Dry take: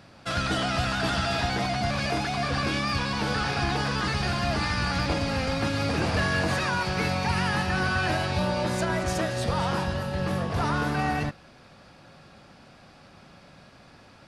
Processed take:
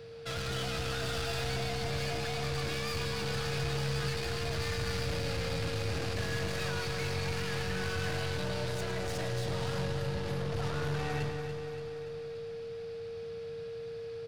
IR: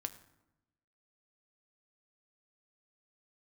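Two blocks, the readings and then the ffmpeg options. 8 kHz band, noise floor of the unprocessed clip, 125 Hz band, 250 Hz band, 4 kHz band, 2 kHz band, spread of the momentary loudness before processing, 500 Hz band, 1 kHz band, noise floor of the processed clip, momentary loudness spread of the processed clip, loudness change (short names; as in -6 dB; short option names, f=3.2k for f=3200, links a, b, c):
-4.5 dB, -52 dBFS, -5.5 dB, -11.0 dB, -6.0 dB, -9.5 dB, 3 LU, -4.0 dB, -12.5 dB, -41 dBFS, 8 LU, -8.5 dB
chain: -filter_complex "[0:a]equalizer=f=125:t=o:w=1:g=6,equalizer=f=250:t=o:w=1:g=-9,equalizer=f=1k:t=o:w=1:g=-7,equalizer=f=4k:t=o:w=1:g=3,equalizer=f=8k:t=o:w=1:g=-4,aeval=exprs='(tanh(44.7*val(0)+0.25)-tanh(0.25))/44.7':c=same,aeval=exprs='val(0)+0.00631*sin(2*PI*460*n/s)':c=same,aecho=1:1:287|574|861|1148|1435|1722|2009:0.398|0.235|0.139|0.0818|0.0482|0.0285|0.0168,asplit=2[a][b];[1:a]atrim=start_sample=2205,adelay=107[c];[b][c]afir=irnorm=-1:irlink=0,volume=-8dB[d];[a][d]amix=inputs=2:normalize=0,volume=-1.5dB"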